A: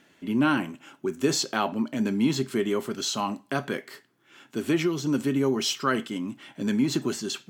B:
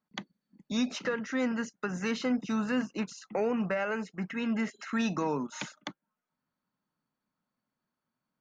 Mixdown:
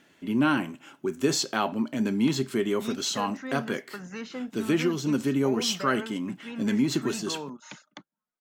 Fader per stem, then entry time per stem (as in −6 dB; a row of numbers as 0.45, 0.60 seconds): −0.5, −6.0 decibels; 0.00, 2.10 seconds